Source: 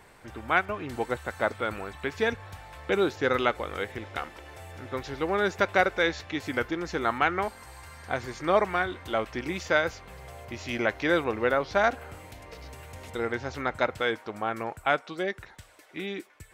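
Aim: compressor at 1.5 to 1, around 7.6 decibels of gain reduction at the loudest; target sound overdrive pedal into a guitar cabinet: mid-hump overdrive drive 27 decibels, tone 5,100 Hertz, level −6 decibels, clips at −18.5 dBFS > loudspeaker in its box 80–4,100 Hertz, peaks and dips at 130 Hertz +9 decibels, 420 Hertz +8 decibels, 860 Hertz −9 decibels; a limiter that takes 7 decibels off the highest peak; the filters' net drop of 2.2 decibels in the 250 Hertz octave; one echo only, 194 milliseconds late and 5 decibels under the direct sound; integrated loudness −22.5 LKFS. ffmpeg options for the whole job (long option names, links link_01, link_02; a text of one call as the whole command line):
ffmpeg -i in.wav -filter_complex "[0:a]equalizer=frequency=250:width_type=o:gain=-7,acompressor=threshold=-40dB:ratio=1.5,alimiter=limit=-22.5dB:level=0:latency=1,aecho=1:1:194:0.562,asplit=2[link_01][link_02];[link_02]highpass=frequency=720:poles=1,volume=27dB,asoftclip=type=tanh:threshold=-18.5dB[link_03];[link_01][link_03]amix=inputs=2:normalize=0,lowpass=frequency=5100:poles=1,volume=-6dB,highpass=80,equalizer=frequency=130:width_type=q:width=4:gain=9,equalizer=frequency=420:width_type=q:width=4:gain=8,equalizer=frequency=860:width_type=q:width=4:gain=-9,lowpass=frequency=4100:width=0.5412,lowpass=frequency=4100:width=1.3066,volume=4dB" out.wav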